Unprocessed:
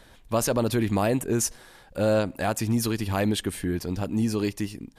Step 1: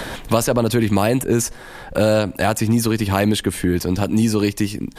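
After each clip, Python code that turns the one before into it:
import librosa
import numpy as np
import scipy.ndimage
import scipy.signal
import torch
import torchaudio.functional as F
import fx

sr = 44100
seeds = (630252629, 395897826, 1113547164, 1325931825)

y = fx.band_squash(x, sr, depth_pct=70)
y = F.gain(torch.from_numpy(y), 7.0).numpy()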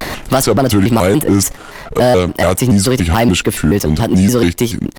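y = fx.leveller(x, sr, passes=2)
y = fx.vibrato_shape(y, sr, shape='square', rate_hz=3.5, depth_cents=250.0)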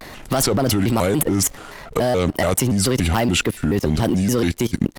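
y = fx.level_steps(x, sr, step_db=19)
y = fx.dmg_crackle(y, sr, seeds[0], per_s=35.0, level_db=-37.0)
y = F.gain(torch.from_numpy(y), 1.0).numpy()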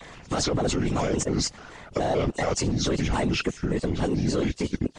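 y = fx.freq_compress(x, sr, knee_hz=2500.0, ratio=1.5)
y = fx.whisperise(y, sr, seeds[1])
y = F.gain(torch.from_numpy(y), -6.5).numpy()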